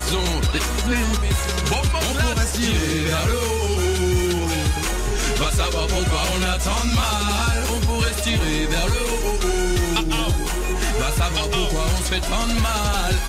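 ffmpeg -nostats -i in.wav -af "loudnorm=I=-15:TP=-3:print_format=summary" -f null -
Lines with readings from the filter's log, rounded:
Input Integrated:    -21.1 LUFS
Input True Peak:      -9.7 dBTP
Input LRA:             0.9 LU
Input Threshold:     -31.1 LUFS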